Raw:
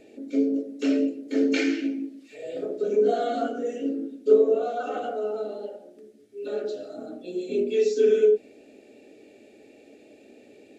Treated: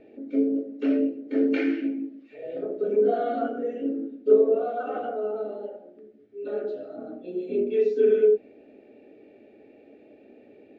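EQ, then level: low-pass 2.1 kHz 12 dB/octave; distance through air 64 m; 0.0 dB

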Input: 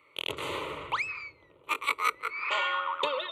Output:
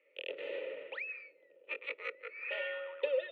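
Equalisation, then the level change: vowel filter e; steep high-pass 160 Hz 96 dB/octave; low-pass 3.5 kHz 12 dB/octave; +4.0 dB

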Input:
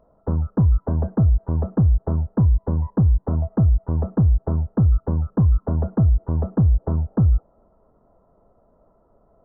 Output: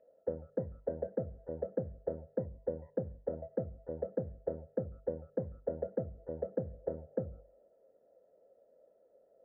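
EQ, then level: vowel filter e; hum notches 50/100/150/200 Hz; +3.0 dB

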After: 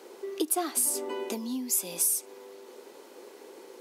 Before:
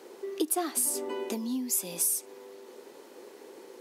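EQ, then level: bass shelf 170 Hz -9 dB; band-stop 1.8 kHz, Q 18; +1.5 dB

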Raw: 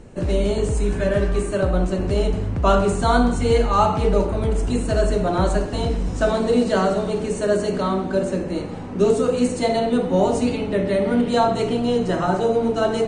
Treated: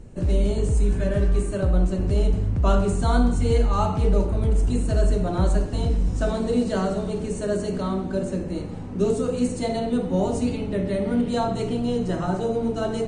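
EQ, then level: bass shelf 190 Hz +8.5 dB; bass shelf 480 Hz +3.5 dB; treble shelf 4.9 kHz +7 dB; -9.0 dB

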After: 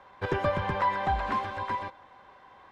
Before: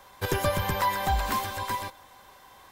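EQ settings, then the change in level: low-pass 2.2 kHz 12 dB/octave; bass shelf 70 Hz -10 dB; 0.0 dB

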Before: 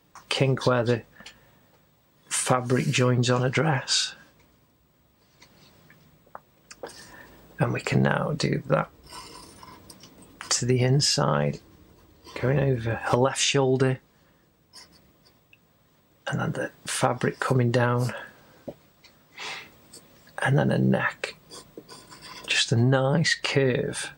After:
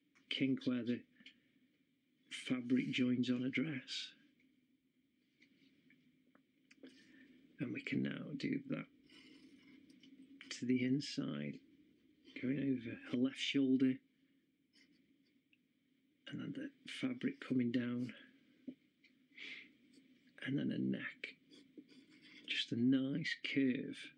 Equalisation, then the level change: vowel filter i; -2.5 dB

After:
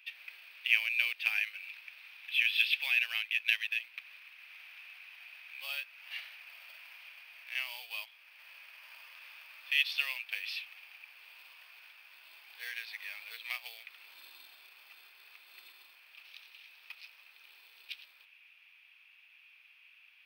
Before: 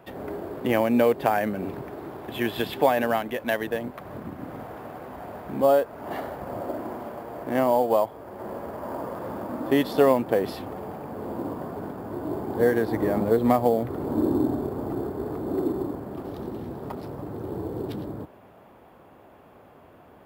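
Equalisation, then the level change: Savitzky-Golay filter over 15 samples; resonant high-pass 2.5 kHz, resonance Q 9.8; differentiator; +4.5 dB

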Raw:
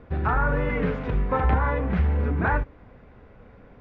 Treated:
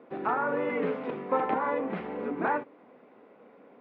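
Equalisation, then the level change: high-pass 250 Hz 24 dB/octave; distance through air 230 m; peaking EQ 1.6 kHz -6 dB 0.53 oct; 0.0 dB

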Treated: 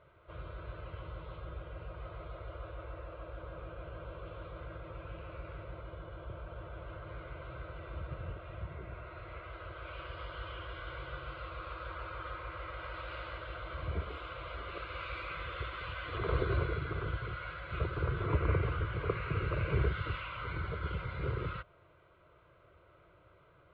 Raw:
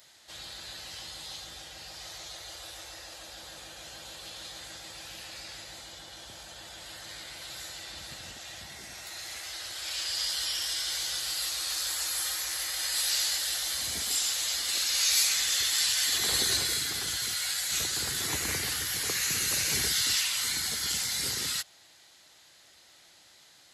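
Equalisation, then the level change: low-pass 1.7 kHz 24 dB/octave; bass shelf 310 Hz +11 dB; static phaser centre 1.2 kHz, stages 8; +4.5 dB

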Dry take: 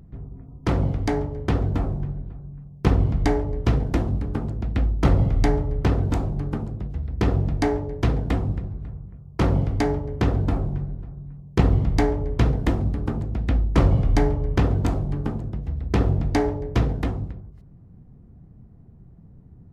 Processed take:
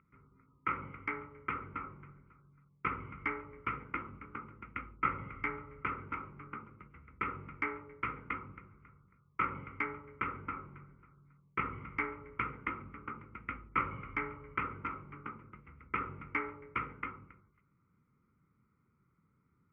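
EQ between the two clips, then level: two resonant band-passes 1.7 kHz, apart 0.72 oct; distance through air 310 m; static phaser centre 1.7 kHz, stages 4; +8.5 dB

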